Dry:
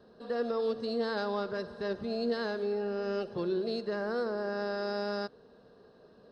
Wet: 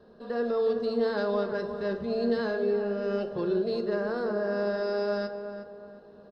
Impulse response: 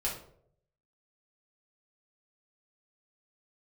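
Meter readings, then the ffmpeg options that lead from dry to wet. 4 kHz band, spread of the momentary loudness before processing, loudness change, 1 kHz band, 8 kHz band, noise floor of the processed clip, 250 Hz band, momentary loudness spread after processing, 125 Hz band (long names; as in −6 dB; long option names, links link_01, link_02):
−1.0 dB, 4 LU, +4.5 dB, +1.5 dB, can't be measured, −52 dBFS, +4.5 dB, 9 LU, +4.0 dB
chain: -filter_complex "[0:a]highshelf=frequency=3500:gain=-7,asplit=2[link_01][link_02];[link_02]adelay=362,lowpass=frequency=1800:poles=1,volume=-8.5dB,asplit=2[link_03][link_04];[link_04]adelay=362,lowpass=frequency=1800:poles=1,volume=0.41,asplit=2[link_05][link_06];[link_06]adelay=362,lowpass=frequency=1800:poles=1,volume=0.41,asplit=2[link_07][link_08];[link_08]adelay=362,lowpass=frequency=1800:poles=1,volume=0.41,asplit=2[link_09][link_10];[link_10]adelay=362,lowpass=frequency=1800:poles=1,volume=0.41[link_11];[link_01][link_03][link_05][link_07][link_09][link_11]amix=inputs=6:normalize=0,asplit=2[link_12][link_13];[1:a]atrim=start_sample=2205,asetrate=52920,aresample=44100[link_14];[link_13][link_14]afir=irnorm=-1:irlink=0,volume=-7.5dB[link_15];[link_12][link_15]amix=inputs=2:normalize=0"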